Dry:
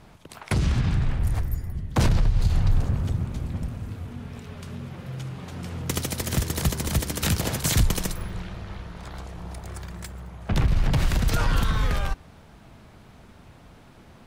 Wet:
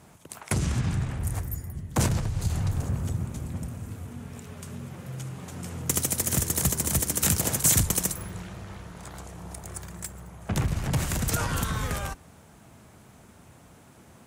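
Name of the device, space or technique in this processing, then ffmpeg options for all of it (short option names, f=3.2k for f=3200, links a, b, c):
budget condenser microphone: -af "highpass=73,highshelf=f=5.7k:t=q:w=1.5:g=8,volume=-2dB"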